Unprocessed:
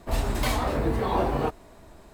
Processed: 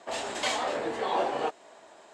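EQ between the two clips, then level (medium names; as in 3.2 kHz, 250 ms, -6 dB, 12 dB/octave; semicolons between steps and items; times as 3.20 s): cabinet simulation 470–8000 Hz, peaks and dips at 560 Hz +3 dB, 800 Hz +4 dB, 1.7 kHz +3 dB, 3.1 kHz +5 dB, 7.3 kHz +6 dB; dynamic bell 1 kHz, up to -4 dB, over -37 dBFS, Q 0.85; 0.0 dB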